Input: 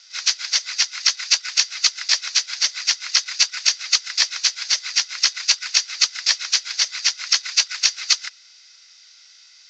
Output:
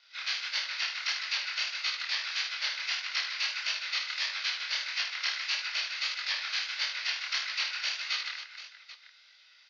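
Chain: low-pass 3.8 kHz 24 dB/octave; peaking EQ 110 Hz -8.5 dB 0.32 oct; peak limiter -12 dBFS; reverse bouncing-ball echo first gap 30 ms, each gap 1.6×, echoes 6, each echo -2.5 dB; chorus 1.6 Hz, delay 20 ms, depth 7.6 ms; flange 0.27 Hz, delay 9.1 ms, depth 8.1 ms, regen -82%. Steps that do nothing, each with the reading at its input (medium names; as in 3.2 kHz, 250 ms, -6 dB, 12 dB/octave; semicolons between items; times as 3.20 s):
peaking EQ 110 Hz: input has nothing below 480 Hz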